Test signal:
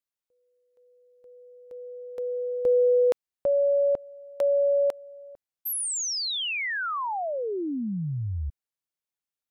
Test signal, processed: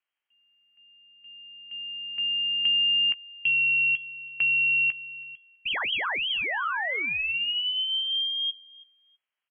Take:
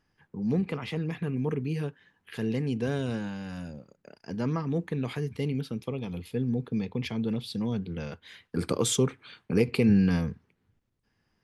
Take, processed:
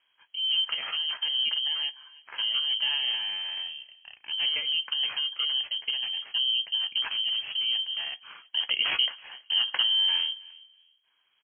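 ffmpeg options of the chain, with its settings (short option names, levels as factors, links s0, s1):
-filter_complex "[0:a]acompressor=threshold=0.0447:ratio=6:attack=48:release=79:knee=6:detection=rms,acrusher=samples=11:mix=1:aa=0.000001,asplit=2[s0][s1];[s1]adelay=16,volume=0.224[s2];[s0][s2]amix=inputs=2:normalize=0,asplit=2[s3][s4];[s4]adelay=326,lowpass=f=1500:p=1,volume=0.0794,asplit=2[s5][s6];[s6]adelay=326,lowpass=f=1500:p=1,volume=0.21[s7];[s5][s7]amix=inputs=2:normalize=0[s8];[s3][s8]amix=inputs=2:normalize=0,lowpass=f=2800:t=q:w=0.5098,lowpass=f=2800:t=q:w=0.6013,lowpass=f=2800:t=q:w=0.9,lowpass=f=2800:t=q:w=2.563,afreqshift=-3300,volume=1.33"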